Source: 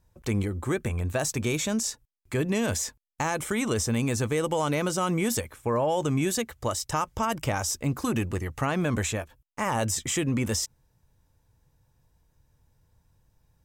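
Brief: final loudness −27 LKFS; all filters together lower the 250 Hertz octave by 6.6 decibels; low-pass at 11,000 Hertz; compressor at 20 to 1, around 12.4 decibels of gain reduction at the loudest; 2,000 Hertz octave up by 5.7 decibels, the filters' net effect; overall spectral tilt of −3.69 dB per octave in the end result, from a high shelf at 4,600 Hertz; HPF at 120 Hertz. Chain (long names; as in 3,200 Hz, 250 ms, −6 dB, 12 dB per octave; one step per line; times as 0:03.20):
high-pass filter 120 Hz
low-pass filter 11,000 Hz
parametric band 250 Hz −8.5 dB
parametric band 2,000 Hz +8.5 dB
high-shelf EQ 4,600 Hz −7 dB
downward compressor 20 to 1, threshold −34 dBFS
level +12 dB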